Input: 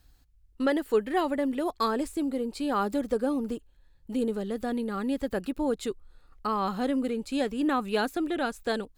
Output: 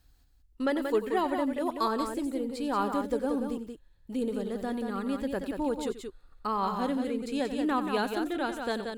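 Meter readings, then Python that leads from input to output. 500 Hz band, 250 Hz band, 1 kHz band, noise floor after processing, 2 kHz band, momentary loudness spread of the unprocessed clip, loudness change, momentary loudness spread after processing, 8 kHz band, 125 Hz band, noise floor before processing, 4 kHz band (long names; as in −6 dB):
−2.0 dB, −2.0 dB, 0.0 dB, −62 dBFS, −2.0 dB, 5 LU, −1.5 dB, 7 LU, −2.0 dB, can't be measured, −61 dBFS, −2.0 dB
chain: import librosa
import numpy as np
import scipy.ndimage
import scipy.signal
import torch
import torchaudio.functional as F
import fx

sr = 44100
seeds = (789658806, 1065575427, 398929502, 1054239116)

y = fx.dynamic_eq(x, sr, hz=960.0, q=7.2, threshold_db=-50.0, ratio=4.0, max_db=7)
y = fx.echo_multitap(y, sr, ms=(90, 181), db=(-13.0, -6.0))
y = y * 10.0 ** (-3.0 / 20.0)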